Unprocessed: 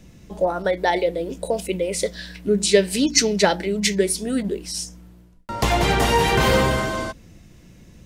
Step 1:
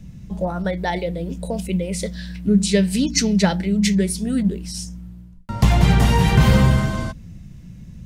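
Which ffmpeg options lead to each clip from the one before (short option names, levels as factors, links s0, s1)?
-af "lowshelf=f=250:t=q:w=1.5:g=11,volume=0.708"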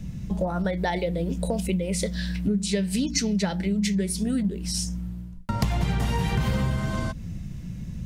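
-af "acompressor=threshold=0.0447:ratio=5,volume=1.58"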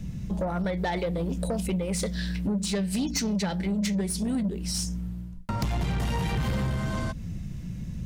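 -af "asoftclip=type=tanh:threshold=0.0841"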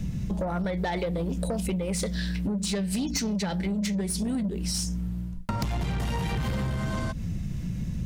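-af "acompressor=threshold=0.0282:ratio=6,volume=1.78"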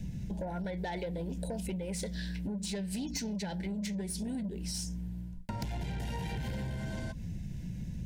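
-af "asuperstop=centerf=1200:order=20:qfactor=3.4,volume=0.398"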